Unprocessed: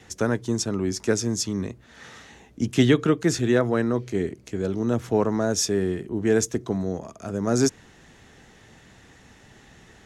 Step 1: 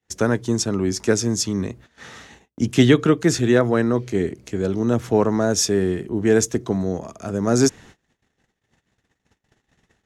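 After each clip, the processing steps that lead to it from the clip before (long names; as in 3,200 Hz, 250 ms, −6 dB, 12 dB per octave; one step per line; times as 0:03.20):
noise gate −47 dBFS, range −38 dB
level +4 dB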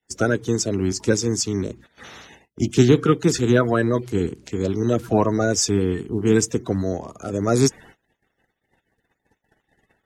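spectral magnitudes quantised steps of 30 dB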